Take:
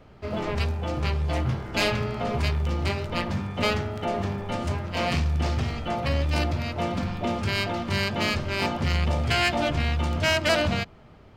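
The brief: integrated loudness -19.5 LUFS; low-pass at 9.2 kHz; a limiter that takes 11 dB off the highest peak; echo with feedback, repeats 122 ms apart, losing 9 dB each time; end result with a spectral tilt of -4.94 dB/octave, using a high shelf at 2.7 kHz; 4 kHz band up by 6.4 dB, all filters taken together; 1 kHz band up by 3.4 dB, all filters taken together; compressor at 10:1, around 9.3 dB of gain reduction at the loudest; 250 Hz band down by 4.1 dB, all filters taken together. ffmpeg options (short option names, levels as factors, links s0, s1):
-af "lowpass=9200,equalizer=f=250:t=o:g=-6,equalizer=f=1000:t=o:g=4,highshelf=f=2700:g=6,equalizer=f=4000:t=o:g=3.5,acompressor=threshold=0.0631:ratio=10,alimiter=limit=0.0668:level=0:latency=1,aecho=1:1:122|244|366|488:0.355|0.124|0.0435|0.0152,volume=4.22"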